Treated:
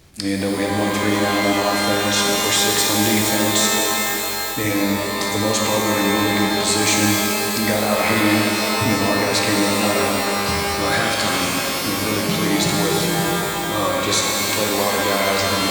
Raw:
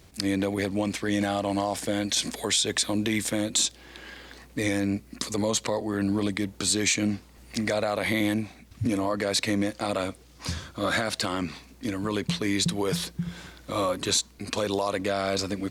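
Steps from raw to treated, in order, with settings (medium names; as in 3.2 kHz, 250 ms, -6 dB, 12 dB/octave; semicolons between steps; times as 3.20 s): pitch-shifted reverb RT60 3.5 s, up +12 st, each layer -2 dB, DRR -1.5 dB; trim +3 dB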